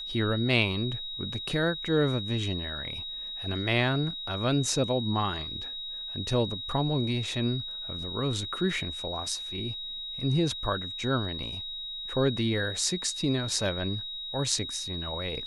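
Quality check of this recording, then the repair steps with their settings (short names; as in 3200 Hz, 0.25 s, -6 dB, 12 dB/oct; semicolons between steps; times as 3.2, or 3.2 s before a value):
tone 3800 Hz -35 dBFS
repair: notch 3800 Hz, Q 30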